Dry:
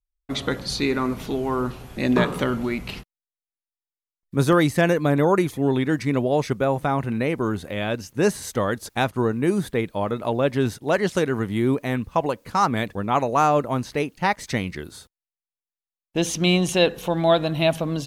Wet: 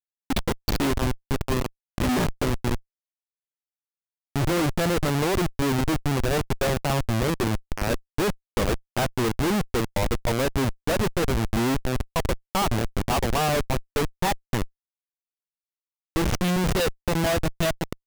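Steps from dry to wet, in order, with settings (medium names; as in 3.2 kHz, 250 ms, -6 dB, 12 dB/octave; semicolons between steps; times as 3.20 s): modulation noise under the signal 29 dB; transient shaper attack +5 dB, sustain +1 dB; spectral noise reduction 24 dB; Schmitt trigger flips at -21 dBFS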